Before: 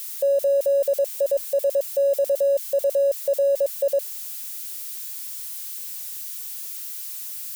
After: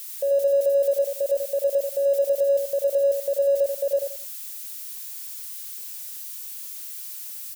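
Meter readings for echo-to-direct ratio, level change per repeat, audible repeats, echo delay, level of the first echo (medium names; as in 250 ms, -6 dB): -5.5 dB, -12.5 dB, 3, 86 ms, -6.0 dB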